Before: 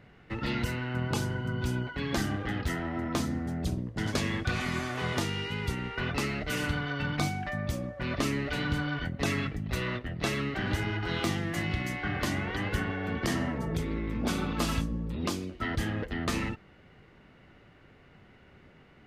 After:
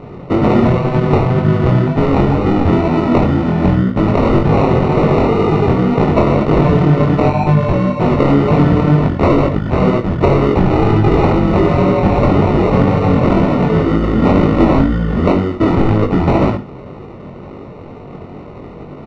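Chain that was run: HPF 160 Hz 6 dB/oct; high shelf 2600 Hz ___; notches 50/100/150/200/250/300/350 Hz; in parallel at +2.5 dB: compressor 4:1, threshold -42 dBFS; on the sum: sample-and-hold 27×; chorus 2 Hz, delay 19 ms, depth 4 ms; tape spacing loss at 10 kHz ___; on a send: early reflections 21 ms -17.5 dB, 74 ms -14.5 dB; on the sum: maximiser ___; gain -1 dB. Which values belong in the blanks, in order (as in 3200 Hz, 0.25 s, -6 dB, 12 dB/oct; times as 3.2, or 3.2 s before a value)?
+5.5 dB, 41 dB, +24.5 dB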